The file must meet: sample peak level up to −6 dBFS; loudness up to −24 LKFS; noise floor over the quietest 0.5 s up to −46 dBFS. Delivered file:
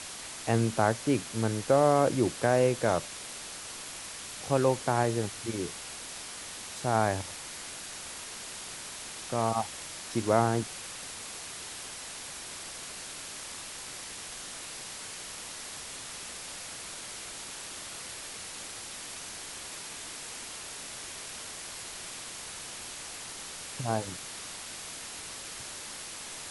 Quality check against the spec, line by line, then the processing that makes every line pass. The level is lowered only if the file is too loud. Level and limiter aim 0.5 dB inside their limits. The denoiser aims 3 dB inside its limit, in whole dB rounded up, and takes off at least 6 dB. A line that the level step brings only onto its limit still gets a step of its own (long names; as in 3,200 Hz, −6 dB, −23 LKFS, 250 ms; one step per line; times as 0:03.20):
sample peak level −11.0 dBFS: in spec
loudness −33.0 LKFS: in spec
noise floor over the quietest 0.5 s −42 dBFS: out of spec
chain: broadband denoise 7 dB, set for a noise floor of −42 dBFS